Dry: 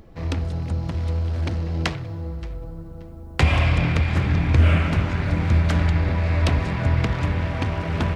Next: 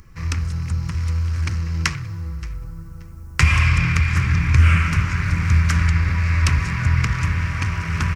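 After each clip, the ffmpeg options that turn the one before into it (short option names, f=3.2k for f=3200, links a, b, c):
-af "firequalizer=gain_entry='entry(140,0);entry(260,-11);entry(390,-11);entry(680,-19);entry(1100,2);entry(1700,3);entry(2400,4);entry(3500,-6);entry(5500,9);entry(9200,7)':delay=0.05:min_phase=1,volume=2.5dB"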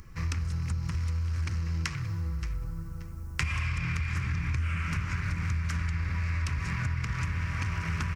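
-filter_complex "[0:a]asplit=2[a][b];[b]alimiter=limit=-13dB:level=0:latency=1:release=105,volume=0.5dB[c];[a][c]amix=inputs=2:normalize=0,acompressor=threshold=-19dB:ratio=6,volume=-8.5dB"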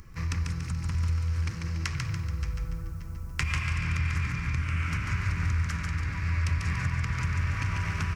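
-af "aecho=1:1:143|286|429|572|715|858:0.631|0.29|0.134|0.0614|0.0283|0.013"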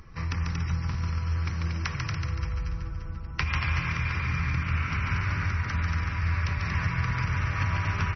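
-af "equalizer=f=790:t=o:w=1.9:g=5.5,aecho=1:1:233:0.562" -ar 24000 -c:a libmp3lame -b:a 24k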